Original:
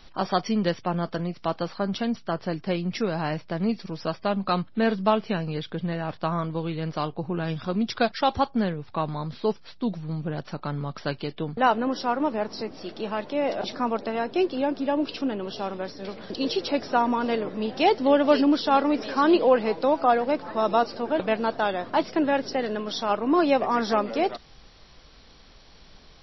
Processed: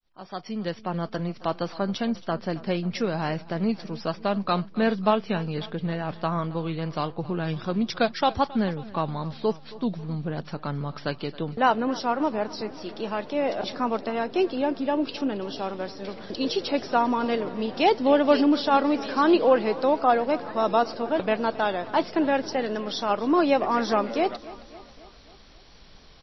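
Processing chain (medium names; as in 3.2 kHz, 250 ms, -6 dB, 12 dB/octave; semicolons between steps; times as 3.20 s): fade-in on the opening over 1.27 s; feedback delay 271 ms, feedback 58%, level -19 dB; vibrato 3.7 Hz 27 cents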